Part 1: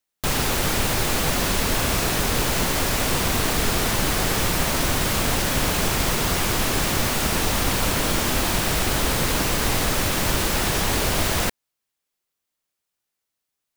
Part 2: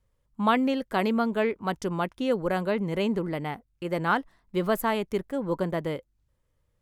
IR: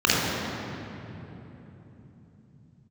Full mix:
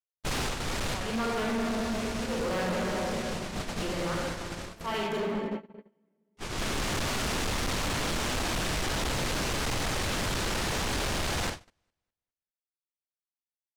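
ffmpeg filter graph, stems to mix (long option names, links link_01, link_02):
-filter_complex "[0:a]lowpass=7300,volume=-4dB,asplit=3[link_01][link_02][link_03];[link_01]atrim=end=4.66,asetpts=PTS-STARTPTS,afade=type=out:start_time=4.656:duration=0.004:curve=hsin[link_04];[link_02]atrim=start=4.66:end=6.37,asetpts=PTS-STARTPTS,volume=0[link_05];[link_03]atrim=start=6.37,asetpts=PTS-STARTPTS,afade=type=in:duration=0.004:curve=hsin[link_06];[link_04][link_05][link_06]concat=n=3:v=0:a=1,asplit=2[link_07][link_08];[link_08]volume=-9dB[link_09];[1:a]lowshelf=frequency=400:gain=-11,aeval=exprs='val(0)*pow(10,-30*(0.5-0.5*cos(2*PI*0.79*n/s))/20)':channel_layout=same,volume=-2.5dB,asplit=3[link_10][link_11][link_12];[link_11]volume=-12dB[link_13];[link_12]apad=whole_len=606880[link_14];[link_07][link_14]sidechaincompress=threshold=-56dB:ratio=4:attack=39:release=1150[link_15];[2:a]atrim=start_sample=2205[link_16];[link_13][link_16]afir=irnorm=-1:irlink=0[link_17];[link_09]aecho=0:1:203|406|609|812|1015:1|0.35|0.122|0.0429|0.015[link_18];[link_15][link_10][link_17][link_18]amix=inputs=4:normalize=0,agate=range=-34dB:threshold=-30dB:ratio=16:detection=peak,asoftclip=type=hard:threshold=-27.5dB"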